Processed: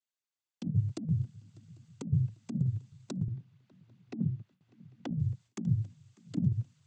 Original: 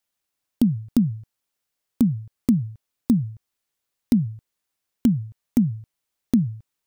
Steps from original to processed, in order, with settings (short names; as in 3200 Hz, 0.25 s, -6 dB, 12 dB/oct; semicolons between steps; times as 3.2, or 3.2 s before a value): noise vocoder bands 16; limiter -14 dBFS, peak gain reduction 9 dB; negative-ratio compressor -28 dBFS, ratio -0.5; swung echo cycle 0.795 s, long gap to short 3:1, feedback 36%, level -23.5 dB; gate with hold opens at -57 dBFS; 3.28–5.11 BPF 160–2900 Hz